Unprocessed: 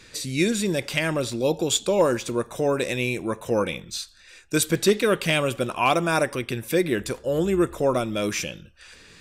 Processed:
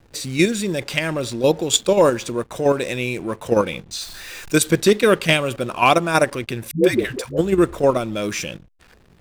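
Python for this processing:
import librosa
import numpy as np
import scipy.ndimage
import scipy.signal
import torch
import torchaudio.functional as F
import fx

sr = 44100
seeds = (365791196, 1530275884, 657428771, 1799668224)

p1 = fx.zero_step(x, sr, step_db=-35.0, at=(4.01, 4.58))
p2 = fx.level_steps(p1, sr, step_db=21)
p3 = p1 + F.gain(torch.from_numpy(p2), 2.5).numpy()
p4 = fx.backlash(p3, sr, play_db=-36.0)
y = fx.dispersion(p4, sr, late='highs', ms=130.0, hz=380.0, at=(6.71, 7.38))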